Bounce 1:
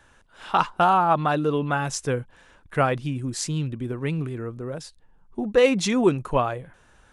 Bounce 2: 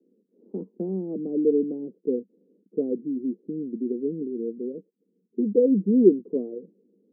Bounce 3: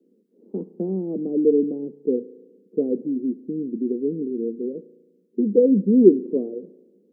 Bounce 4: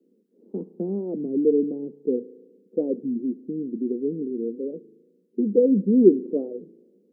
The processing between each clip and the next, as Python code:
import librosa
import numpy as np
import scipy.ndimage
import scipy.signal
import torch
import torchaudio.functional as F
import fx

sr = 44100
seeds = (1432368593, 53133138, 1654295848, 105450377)

y1 = scipy.signal.sosfilt(scipy.signal.cheby1(4, 1.0, [190.0, 470.0], 'bandpass', fs=sr, output='sos'), x)
y1 = y1 * librosa.db_to_amplitude(4.0)
y2 = fx.rev_spring(y1, sr, rt60_s=1.2, pass_ms=(35,), chirp_ms=50, drr_db=17.0)
y2 = y2 * librosa.db_to_amplitude(3.5)
y3 = fx.record_warp(y2, sr, rpm=33.33, depth_cents=160.0)
y3 = y3 * librosa.db_to_amplitude(-2.0)